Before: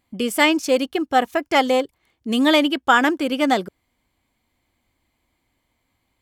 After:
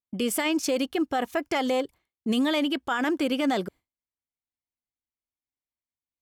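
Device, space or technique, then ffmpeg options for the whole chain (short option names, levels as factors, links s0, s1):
stacked limiters: -af "agate=range=0.0224:threshold=0.0126:ratio=3:detection=peak,alimiter=limit=0.422:level=0:latency=1:release=258,alimiter=limit=0.237:level=0:latency=1:release=20,alimiter=limit=0.133:level=0:latency=1:release=74"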